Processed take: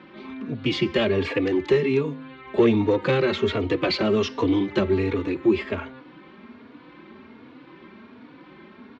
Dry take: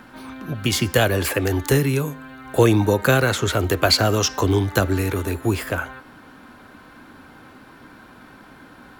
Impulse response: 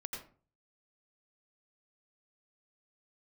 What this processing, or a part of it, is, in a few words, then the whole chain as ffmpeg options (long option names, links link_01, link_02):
barber-pole flanger into a guitar amplifier: -filter_complex "[0:a]asplit=2[link_01][link_02];[link_02]adelay=3.5,afreqshift=1.3[link_03];[link_01][link_03]amix=inputs=2:normalize=1,asoftclip=type=tanh:threshold=-14.5dB,highpass=99,equalizer=frequency=110:width_type=q:width=4:gain=-7,equalizer=frequency=220:width_type=q:width=4:gain=5,equalizer=frequency=370:width_type=q:width=4:gain=7,equalizer=frequency=740:width_type=q:width=4:gain=-7,equalizer=frequency=1500:width_type=q:width=4:gain=-9,equalizer=frequency=2200:width_type=q:width=4:gain=4,lowpass=frequency=3900:width=0.5412,lowpass=frequency=3900:width=1.3066,volume=1.5dB"